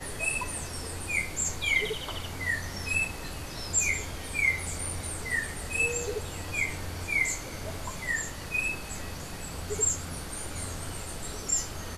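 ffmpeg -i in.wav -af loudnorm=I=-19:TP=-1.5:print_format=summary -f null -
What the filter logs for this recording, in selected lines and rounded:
Input Integrated:    -30.5 LUFS
Input True Peak:     -13.2 dBTP
Input LRA:             3.2 LU
Input Threshold:     -40.5 LUFS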